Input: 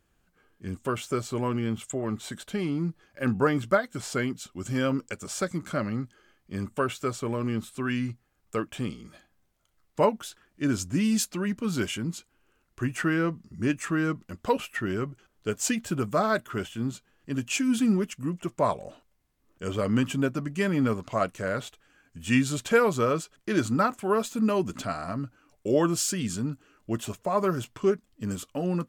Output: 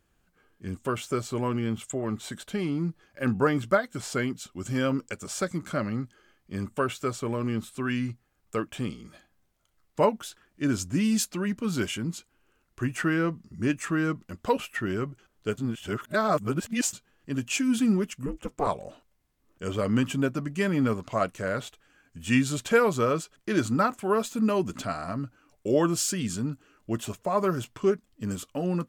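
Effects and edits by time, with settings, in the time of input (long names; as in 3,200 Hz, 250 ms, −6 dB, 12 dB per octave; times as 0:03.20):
0:15.58–0:16.93: reverse
0:18.26–0:18.67: ring modulation 140 Hz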